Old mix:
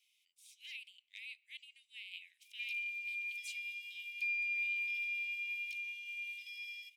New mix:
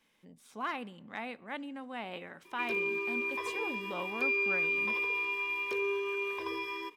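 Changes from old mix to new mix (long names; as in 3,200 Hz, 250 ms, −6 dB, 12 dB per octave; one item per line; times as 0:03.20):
background +4.0 dB
master: remove Butterworth high-pass 2,300 Hz 72 dB per octave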